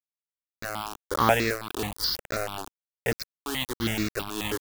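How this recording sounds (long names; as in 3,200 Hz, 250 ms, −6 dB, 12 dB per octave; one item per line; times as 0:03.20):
tremolo triangle 1.1 Hz, depth 75%
a quantiser's noise floor 6 bits, dither none
notches that jump at a steady rate 9.3 Hz 540–3,100 Hz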